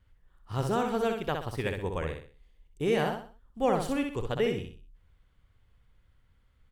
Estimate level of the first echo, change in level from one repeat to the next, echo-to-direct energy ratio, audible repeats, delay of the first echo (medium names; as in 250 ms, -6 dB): -5.0 dB, -9.0 dB, -4.5 dB, 4, 63 ms